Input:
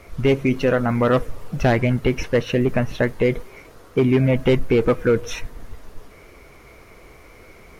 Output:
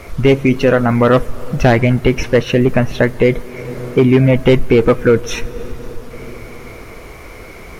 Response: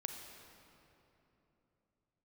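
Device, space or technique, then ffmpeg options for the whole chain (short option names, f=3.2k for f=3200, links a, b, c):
ducked reverb: -filter_complex "[0:a]asplit=3[a][b][c];[1:a]atrim=start_sample=2205[d];[b][d]afir=irnorm=-1:irlink=0[e];[c]apad=whole_len=343715[f];[e][f]sidechaincompress=threshold=-35dB:ratio=8:attack=16:release=321,volume=0.5dB[g];[a][g]amix=inputs=2:normalize=0,volume=6dB"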